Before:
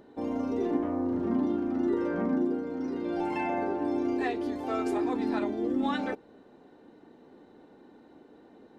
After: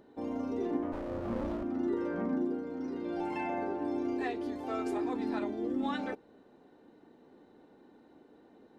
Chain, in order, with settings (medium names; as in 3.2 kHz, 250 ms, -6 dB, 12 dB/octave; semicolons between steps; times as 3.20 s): 0.92–1.63 s: comb filter that takes the minimum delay 9.3 ms; trim -4.5 dB